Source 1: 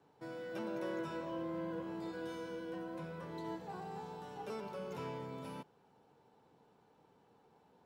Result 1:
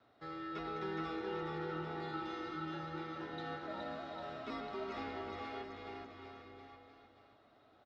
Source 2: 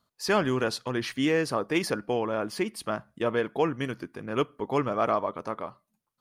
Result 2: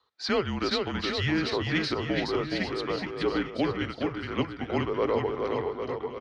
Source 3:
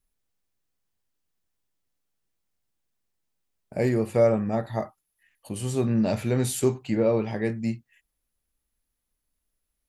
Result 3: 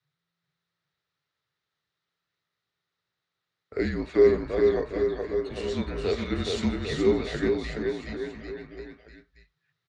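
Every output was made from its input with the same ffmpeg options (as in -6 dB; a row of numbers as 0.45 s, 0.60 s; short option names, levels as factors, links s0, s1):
-filter_complex "[0:a]afreqshift=-170,highpass=110,equalizer=f=170:t=q:w=4:g=-10,equalizer=f=270:t=q:w=4:g=-4,equalizer=f=420:t=q:w=4:g=4,equalizer=f=1300:t=q:w=4:g=9,equalizer=f=1900:t=q:w=4:g=8,equalizer=f=3800:t=q:w=4:g=8,lowpass=f=5300:w=0.5412,lowpass=f=5300:w=1.3066,acrossover=split=740|2200[s0][s1][s2];[s1]acompressor=threshold=0.00562:ratio=6[s3];[s0][s3][s2]amix=inputs=3:normalize=0,aecho=1:1:420|798|1138|1444|1720:0.631|0.398|0.251|0.158|0.1"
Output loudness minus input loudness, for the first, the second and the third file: +0.5 LU, -0.5 LU, -1.0 LU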